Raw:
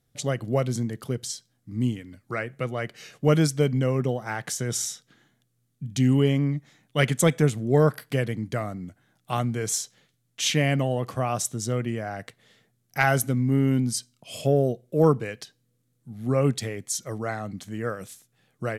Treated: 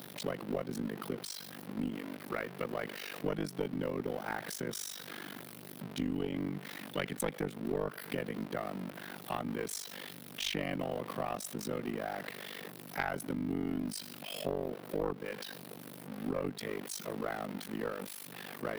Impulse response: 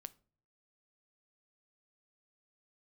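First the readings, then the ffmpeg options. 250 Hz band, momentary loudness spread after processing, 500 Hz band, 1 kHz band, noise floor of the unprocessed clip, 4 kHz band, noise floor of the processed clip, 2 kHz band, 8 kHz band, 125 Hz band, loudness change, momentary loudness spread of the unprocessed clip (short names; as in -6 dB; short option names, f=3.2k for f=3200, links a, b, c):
-11.0 dB, 8 LU, -11.5 dB, -9.5 dB, -72 dBFS, -8.5 dB, -49 dBFS, -10.0 dB, -14.0 dB, -19.5 dB, -13.0 dB, 15 LU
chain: -af "aeval=exprs='val(0)+0.5*0.0282*sgn(val(0))':c=same,tremolo=f=49:d=1,highpass=f=180:w=0.5412,highpass=f=180:w=1.3066,equalizer=f=7k:t=o:w=0.77:g=-13,aeval=exprs='0.562*(cos(1*acos(clip(val(0)/0.562,-1,1)))-cos(1*PI/2))+0.251*(cos(2*acos(clip(val(0)/0.562,-1,1)))-cos(2*PI/2))':c=same,acompressor=threshold=-29dB:ratio=4,volume=-2.5dB"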